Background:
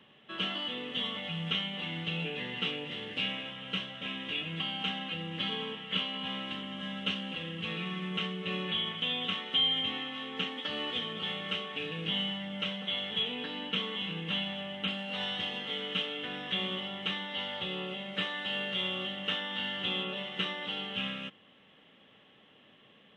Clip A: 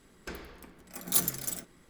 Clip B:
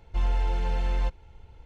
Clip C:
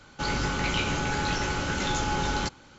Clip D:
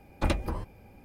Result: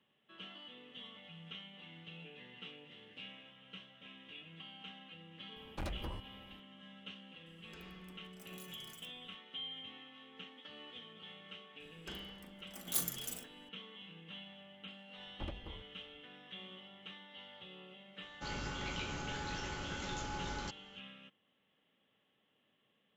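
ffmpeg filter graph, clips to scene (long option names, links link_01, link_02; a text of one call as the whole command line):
ffmpeg -i bed.wav -i cue0.wav -i cue1.wav -i cue2.wav -i cue3.wav -filter_complex "[4:a]asplit=2[link_01][link_02];[1:a]asplit=2[link_03][link_04];[0:a]volume=-17dB[link_05];[link_01]volume=28dB,asoftclip=hard,volume=-28dB[link_06];[link_03]acompressor=threshold=-41dB:ratio=6:attack=3.2:release=140:knee=1:detection=peak[link_07];[link_04]asplit=2[link_08][link_09];[link_09]adelay=40,volume=-8.5dB[link_10];[link_08][link_10]amix=inputs=2:normalize=0[link_11];[link_02]lowpass=frequency=1300:poles=1[link_12];[link_06]atrim=end=1.04,asetpts=PTS-STARTPTS,volume=-8.5dB,afade=type=in:duration=0.004:curve=hsin,afade=type=out:start_time=1.036:duration=0.004:curve=hsin,adelay=5560[link_13];[link_07]atrim=end=1.89,asetpts=PTS-STARTPTS,volume=-11.5dB,afade=type=in:duration=0.004:curve=hsin,afade=type=out:start_time=1.886:duration=0.004:curve=hsin,adelay=328986S[link_14];[link_11]atrim=end=1.89,asetpts=PTS-STARTPTS,volume=-9dB,afade=type=in:duration=0.004:curve=hsin,afade=type=out:start_time=1.886:duration=0.004:curve=hsin,adelay=11800[link_15];[link_12]atrim=end=1.04,asetpts=PTS-STARTPTS,volume=-16.5dB,afade=type=in:duration=0.004:curve=hsin,afade=type=out:start_time=1.036:duration=0.004:curve=hsin,adelay=15180[link_16];[3:a]atrim=end=2.78,asetpts=PTS-STARTPTS,volume=-14dB,afade=type=in:duration=0.004:curve=hsin,afade=type=out:start_time=2.776:duration=0.004:curve=hsin,adelay=18220[link_17];[link_05][link_13][link_14][link_15][link_16][link_17]amix=inputs=6:normalize=0" out.wav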